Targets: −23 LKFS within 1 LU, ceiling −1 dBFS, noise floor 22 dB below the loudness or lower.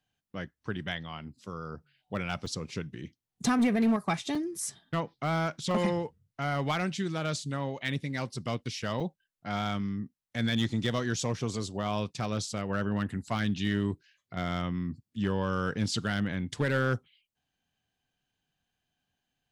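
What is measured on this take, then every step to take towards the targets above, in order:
share of clipped samples 0.5%; peaks flattened at −20.5 dBFS; number of dropouts 3; longest dropout 3.8 ms; integrated loudness −32.0 LKFS; sample peak −20.5 dBFS; target loudness −23.0 LKFS
→ clipped peaks rebuilt −20.5 dBFS
repair the gap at 0:02.46/0:04.35/0:09.00, 3.8 ms
level +9 dB

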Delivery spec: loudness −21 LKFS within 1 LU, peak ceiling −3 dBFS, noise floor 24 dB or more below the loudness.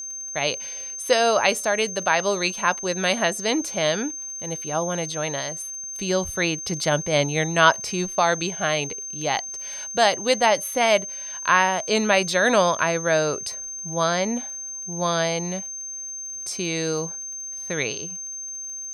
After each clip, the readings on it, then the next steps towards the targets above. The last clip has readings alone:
crackle rate 32 per second; interfering tone 6,300 Hz; level of the tone −31 dBFS; integrated loudness −23.0 LKFS; sample peak −3.0 dBFS; target loudness −21.0 LKFS
→ click removal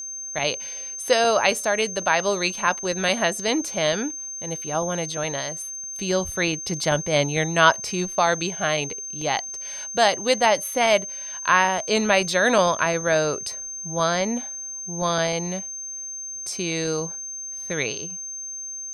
crackle rate 0.11 per second; interfering tone 6,300 Hz; level of the tone −31 dBFS
→ notch filter 6,300 Hz, Q 30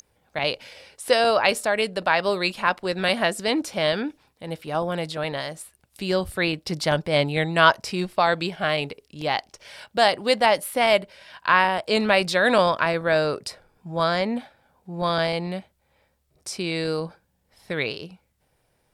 interfering tone none found; integrated loudness −23.0 LKFS; sample peak −3.5 dBFS; target loudness −21.0 LKFS
→ level +2 dB
brickwall limiter −3 dBFS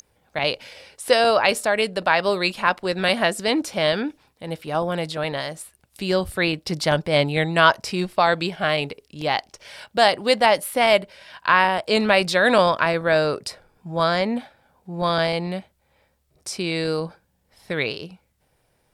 integrated loudness −21.0 LKFS; sample peak −3.0 dBFS; background noise floor −67 dBFS

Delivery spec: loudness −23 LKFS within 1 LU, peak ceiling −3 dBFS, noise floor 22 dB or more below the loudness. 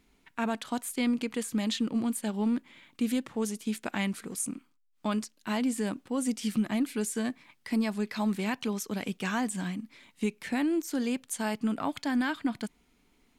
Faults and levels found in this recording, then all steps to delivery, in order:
integrated loudness −31.5 LKFS; sample peak −18.5 dBFS; target loudness −23.0 LKFS
→ level +8.5 dB

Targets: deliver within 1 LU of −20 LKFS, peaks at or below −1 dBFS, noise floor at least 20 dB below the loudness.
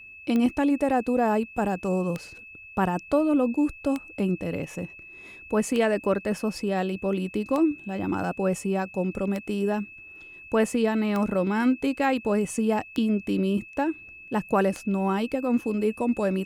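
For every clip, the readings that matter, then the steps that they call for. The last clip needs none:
number of clicks 9; interfering tone 2,600 Hz; level of the tone −43 dBFS; integrated loudness −26.0 LKFS; sample peak −9.5 dBFS; target loudness −20.0 LKFS
→ click removal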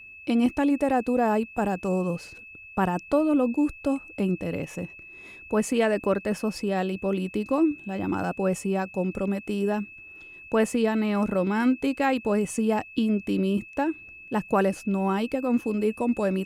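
number of clicks 0; interfering tone 2,600 Hz; level of the tone −43 dBFS
→ notch filter 2,600 Hz, Q 30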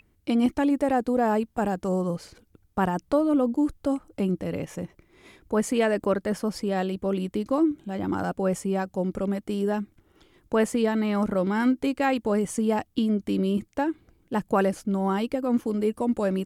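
interfering tone none found; integrated loudness −26.0 LKFS; sample peak −9.5 dBFS; target loudness −20.0 LKFS
→ level +6 dB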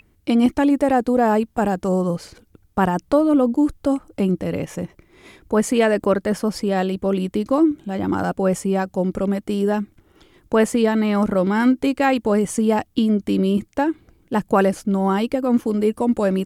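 integrated loudness −20.0 LKFS; sample peak −3.5 dBFS; background noise floor −59 dBFS

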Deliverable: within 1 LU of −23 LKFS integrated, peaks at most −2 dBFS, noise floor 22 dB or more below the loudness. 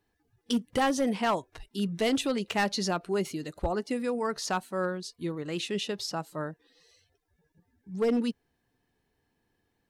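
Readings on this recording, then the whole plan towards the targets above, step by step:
share of clipped samples 0.7%; peaks flattened at −20.5 dBFS; integrated loudness −30.5 LKFS; sample peak −20.5 dBFS; target loudness −23.0 LKFS
→ clipped peaks rebuilt −20.5 dBFS
level +7.5 dB

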